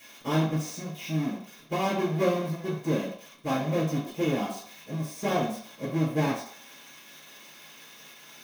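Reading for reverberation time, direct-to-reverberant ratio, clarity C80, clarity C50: 0.60 s, -11.0 dB, 8.5 dB, 5.0 dB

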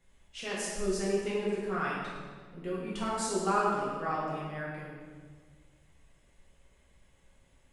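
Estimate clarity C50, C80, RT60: -1.0 dB, 1.0 dB, 1.6 s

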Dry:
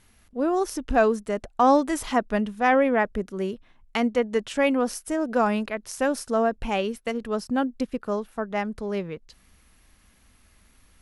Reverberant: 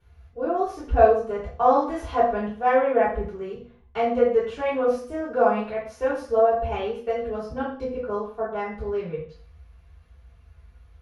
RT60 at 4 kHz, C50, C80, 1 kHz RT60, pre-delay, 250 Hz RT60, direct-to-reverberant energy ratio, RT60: 0.50 s, 4.0 dB, 8.0 dB, 0.45 s, 3 ms, 0.50 s, -12.0 dB, 0.45 s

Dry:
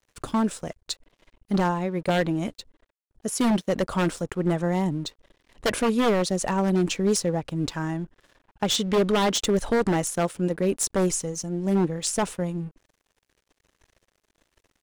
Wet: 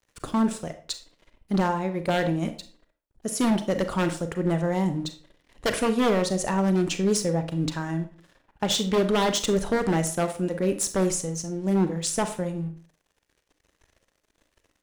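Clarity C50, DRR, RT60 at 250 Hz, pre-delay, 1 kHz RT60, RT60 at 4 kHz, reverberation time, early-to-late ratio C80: 11.5 dB, 8.5 dB, 0.50 s, 32 ms, 0.40 s, 0.35 s, 0.40 s, 16.0 dB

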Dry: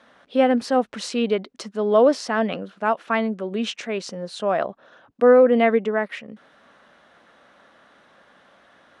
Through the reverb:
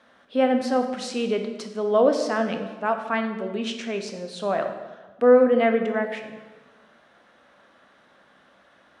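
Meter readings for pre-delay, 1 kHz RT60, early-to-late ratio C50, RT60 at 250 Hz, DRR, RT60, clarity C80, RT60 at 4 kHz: 12 ms, 1.2 s, 7.5 dB, 1.5 s, 5.5 dB, 1.3 s, 9.0 dB, 1.0 s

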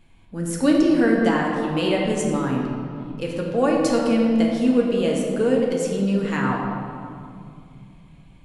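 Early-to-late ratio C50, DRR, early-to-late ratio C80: 1.0 dB, -2.0 dB, 2.5 dB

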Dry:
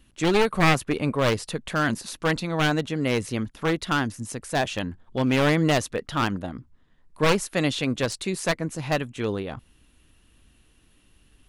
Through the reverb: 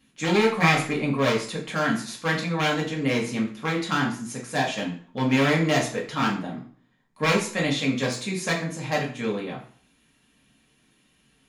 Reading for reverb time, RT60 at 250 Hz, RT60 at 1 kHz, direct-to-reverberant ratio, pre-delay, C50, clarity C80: 0.50 s, 0.45 s, 0.50 s, -3.5 dB, 3 ms, 8.0 dB, 12.0 dB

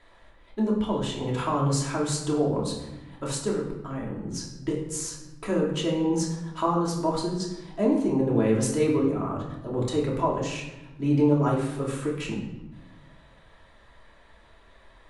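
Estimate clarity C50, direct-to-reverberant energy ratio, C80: 4.5 dB, -4.0 dB, 7.5 dB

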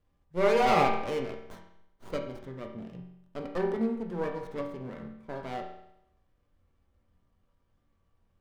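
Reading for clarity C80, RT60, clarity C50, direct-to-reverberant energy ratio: 8.5 dB, 0.80 s, 6.0 dB, 0.5 dB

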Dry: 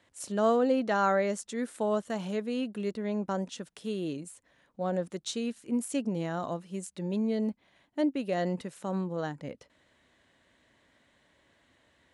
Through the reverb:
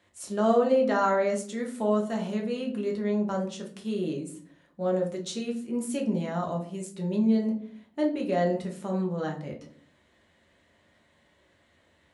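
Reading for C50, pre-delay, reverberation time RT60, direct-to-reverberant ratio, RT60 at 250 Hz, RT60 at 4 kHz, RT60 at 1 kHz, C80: 9.5 dB, 5 ms, 0.55 s, -0.5 dB, 0.80 s, 0.30 s, 0.45 s, 15.0 dB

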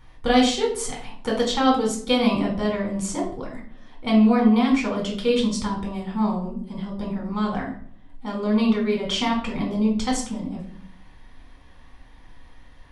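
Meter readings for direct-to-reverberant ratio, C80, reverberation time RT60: -2.0 dB, 11.0 dB, 0.55 s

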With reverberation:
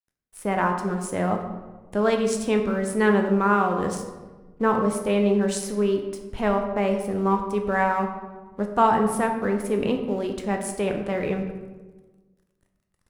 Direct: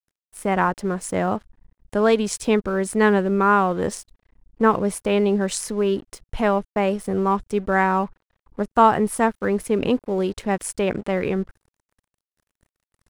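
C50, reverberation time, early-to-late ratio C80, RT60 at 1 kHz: 6.5 dB, 1.3 s, 8.5 dB, 1.2 s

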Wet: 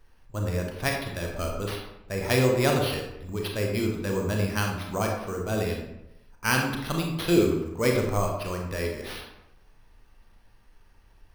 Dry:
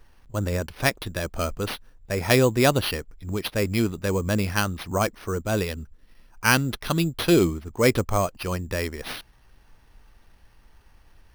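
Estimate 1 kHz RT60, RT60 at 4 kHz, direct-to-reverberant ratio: 0.85 s, 0.55 s, 0.5 dB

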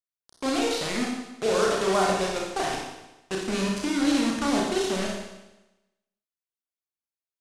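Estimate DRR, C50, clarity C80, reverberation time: -2.0 dB, 1.5 dB, 4.0 dB, 1.0 s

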